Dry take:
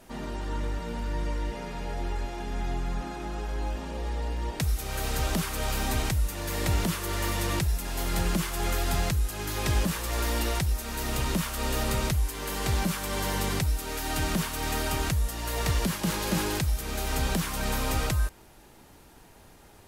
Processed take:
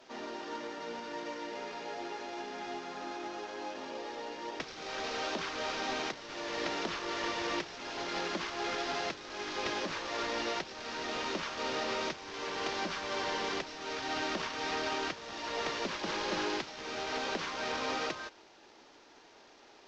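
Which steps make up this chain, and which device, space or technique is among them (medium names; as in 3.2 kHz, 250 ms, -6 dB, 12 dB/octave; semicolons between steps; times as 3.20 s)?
early wireless headset (high-pass 290 Hz 24 dB/octave; CVSD coder 32 kbps); trim -2 dB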